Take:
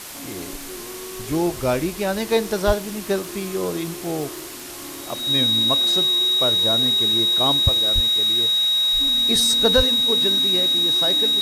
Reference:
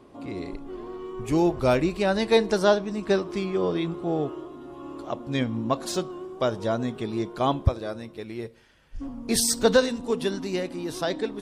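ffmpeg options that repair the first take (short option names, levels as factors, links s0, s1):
-filter_complex "[0:a]adeclick=t=4,bandreject=f=3800:w=30,asplit=3[s0][s1][s2];[s0]afade=t=out:st=2.66:d=0.02[s3];[s1]highpass=f=140:w=0.5412,highpass=f=140:w=1.3066,afade=t=in:st=2.66:d=0.02,afade=t=out:st=2.78:d=0.02[s4];[s2]afade=t=in:st=2.78:d=0.02[s5];[s3][s4][s5]amix=inputs=3:normalize=0,asplit=3[s6][s7][s8];[s6]afade=t=out:st=7.94:d=0.02[s9];[s7]highpass=f=140:w=0.5412,highpass=f=140:w=1.3066,afade=t=in:st=7.94:d=0.02,afade=t=out:st=8.06:d=0.02[s10];[s8]afade=t=in:st=8.06:d=0.02[s11];[s9][s10][s11]amix=inputs=3:normalize=0,asplit=3[s12][s13][s14];[s12]afade=t=out:st=9.76:d=0.02[s15];[s13]highpass=f=140:w=0.5412,highpass=f=140:w=1.3066,afade=t=in:st=9.76:d=0.02,afade=t=out:st=9.88:d=0.02[s16];[s14]afade=t=in:st=9.88:d=0.02[s17];[s15][s16][s17]amix=inputs=3:normalize=0,afwtdn=0.018"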